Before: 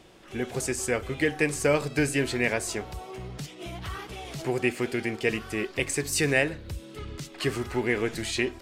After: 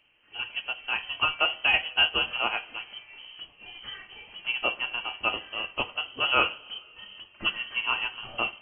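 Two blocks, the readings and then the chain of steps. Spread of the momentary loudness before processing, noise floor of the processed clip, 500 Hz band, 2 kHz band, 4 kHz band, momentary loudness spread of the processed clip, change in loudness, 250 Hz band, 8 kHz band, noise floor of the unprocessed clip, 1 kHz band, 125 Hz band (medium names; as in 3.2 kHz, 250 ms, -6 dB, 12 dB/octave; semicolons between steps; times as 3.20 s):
14 LU, -58 dBFS, -11.0 dB, +2.0 dB, +9.5 dB, 19 LU, +1.0 dB, -16.5 dB, under -40 dB, -47 dBFS, +5.5 dB, -18.5 dB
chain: frequency inversion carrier 3.1 kHz; two-slope reverb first 0.35 s, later 2.6 s, from -16 dB, DRR 5 dB; upward expansion 1.5:1, over -44 dBFS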